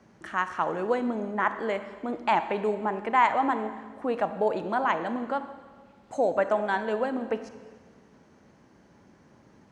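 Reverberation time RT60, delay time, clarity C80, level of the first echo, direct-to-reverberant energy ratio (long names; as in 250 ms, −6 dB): 1.5 s, no echo audible, 12.0 dB, no echo audible, 10.0 dB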